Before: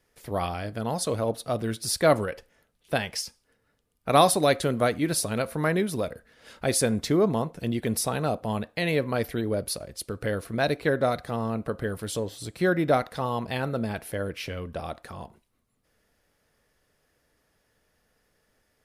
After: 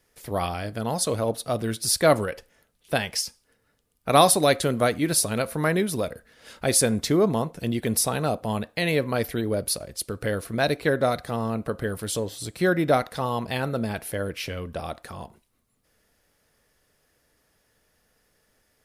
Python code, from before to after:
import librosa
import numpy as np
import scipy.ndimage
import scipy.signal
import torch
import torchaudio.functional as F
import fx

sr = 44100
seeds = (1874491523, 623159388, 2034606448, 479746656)

y = fx.high_shelf(x, sr, hz=4500.0, db=5.0)
y = F.gain(torch.from_numpy(y), 1.5).numpy()